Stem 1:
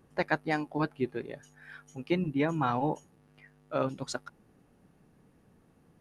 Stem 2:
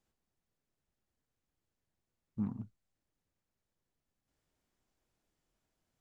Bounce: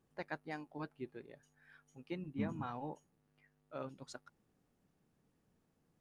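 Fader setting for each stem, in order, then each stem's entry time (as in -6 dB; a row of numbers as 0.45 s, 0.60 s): -14.5 dB, -4.0 dB; 0.00 s, 0.00 s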